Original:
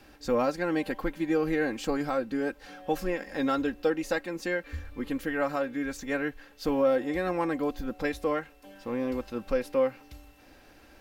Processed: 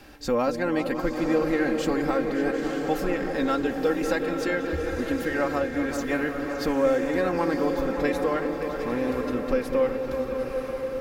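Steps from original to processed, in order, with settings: delay with an opening low-pass 188 ms, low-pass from 400 Hz, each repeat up 2 oct, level -6 dB; in parallel at -0.5 dB: compression, threshold -35 dBFS, peak gain reduction 15 dB; on the sum: echo that smears into a reverb 974 ms, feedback 41%, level -7 dB

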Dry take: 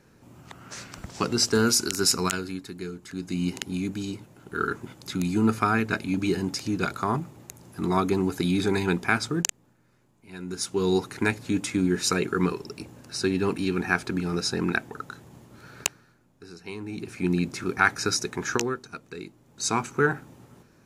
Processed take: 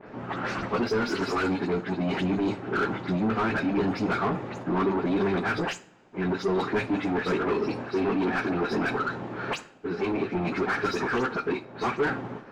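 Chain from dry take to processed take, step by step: delay that grows with frequency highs late, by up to 121 ms; bass shelf 440 Hz +8.5 dB; reverse; compression 8:1, threshold -26 dBFS, peak gain reduction 14.5 dB; reverse; waveshaping leveller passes 3; low-pass 3.4 kHz 12 dB/octave; peaking EQ 71 Hz -5.5 dB 2.7 oct; hum notches 50/100 Hz; plain phase-vocoder stretch 0.6×; overdrive pedal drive 22 dB, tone 1.2 kHz, clips at -12 dBFS; reverberation, pre-delay 3 ms, DRR 11 dB; trim -4 dB

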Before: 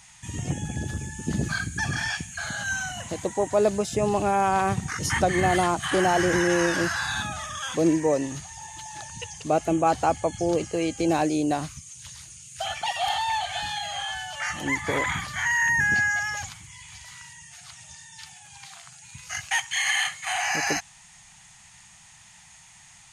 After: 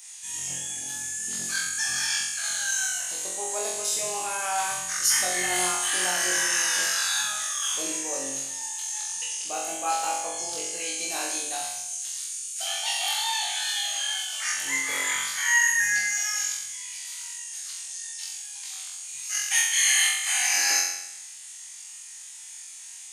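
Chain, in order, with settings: differentiator; flutter echo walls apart 3.8 m, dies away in 0.85 s; trim +6 dB

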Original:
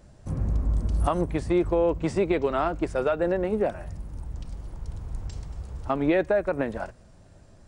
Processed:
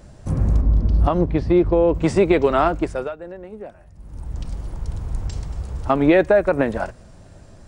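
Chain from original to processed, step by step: 0.61–1.94 s: FFT filter 270 Hz 0 dB, 1.5 kHz -6 dB, 5.1 kHz -5 dB, 7.7 kHz -23 dB; 2.67–4.43 s: dip -18.5 dB, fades 0.49 s; trim +8 dB

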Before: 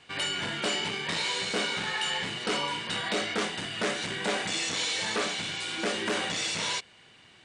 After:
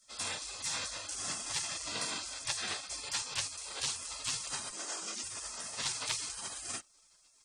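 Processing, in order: 4.71–5.24 s: band-pass 670–6800 Hz; spectral gate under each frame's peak -20 dB weak; trim +6 dB

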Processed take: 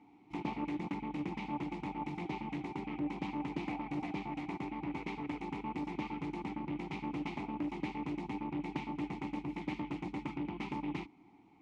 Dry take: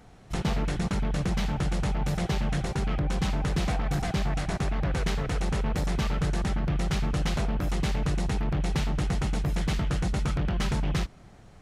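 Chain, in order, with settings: vowel filter u; bass shelf 170 Hz -4.5 dB; loudspeaker Doppler distortion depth 0.22 ms; trim +6 dB

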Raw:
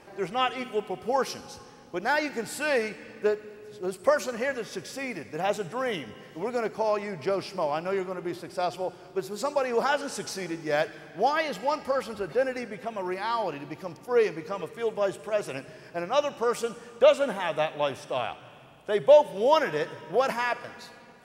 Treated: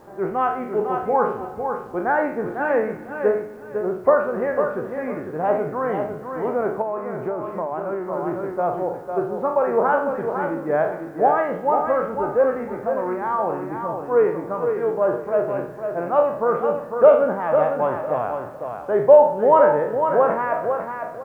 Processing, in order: spectral sustain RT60 0.51 s; low-pass 1.4 kHz 24 dB/octave; bit crusher 11-bit; feedback delay 502 ms, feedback 23%, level -6.5 dB; 6.81–8.13 s: compression, threshold -28 dBFS, peak gain reduction 8 dB; trim +5 dB

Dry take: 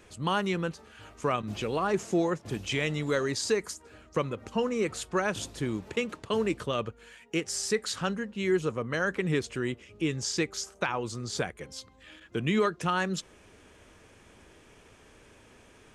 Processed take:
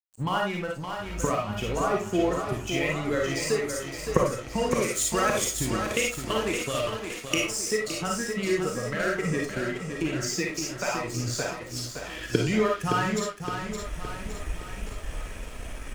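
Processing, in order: expander on every frequency bin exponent 1.5; recorder AGC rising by 41 dB/s; peaking EQ 3.8 kHz -8 dB 0.51 oct; feedback delay 566 ms, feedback 55%, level -6 dB; crossover distortion -43.5 dBFS; 4.71–7.40 s: treble shelf 2.5 kHz +10.5 dB; reverberation RT60 0.25 s, pre-delay 15 ms, DRR -1.5 dB; trim +2 dB

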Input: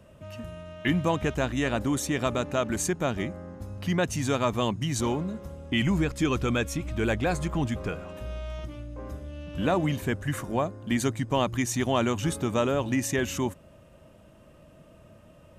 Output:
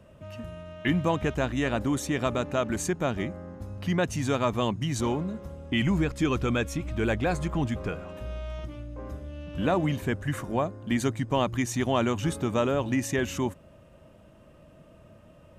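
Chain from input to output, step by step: treble shelf 4.6 kHz -5 dB

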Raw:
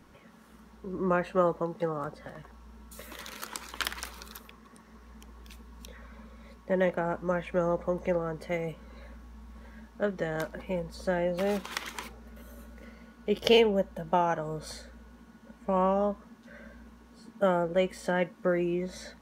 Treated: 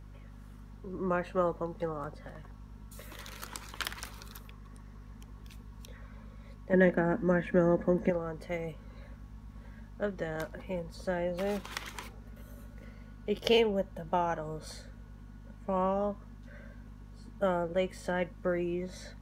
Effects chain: 6.73–8.10 s: small resonant body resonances 250/1700 Hz, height 16 dB, ringing for 25 ms; hum 50 Hz, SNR 15 dB; trim -4 dB

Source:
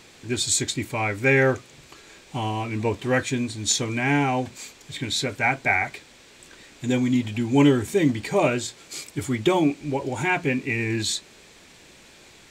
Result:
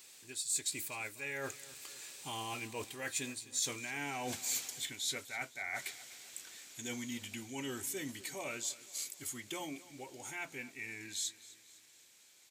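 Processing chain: Doppler pass-by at 3.93 s, 13 m/s, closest 7.2 m; tilt EQ +3 dB/octave; reverse; compression 16:1, threshold -39 dBFS, peak gain reduction 28 dB; reverse; treble shelf 7.7 kHz +12 dB; feedback delay 254 ms, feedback 50%, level -18.5 dB; trim +1.5 dB

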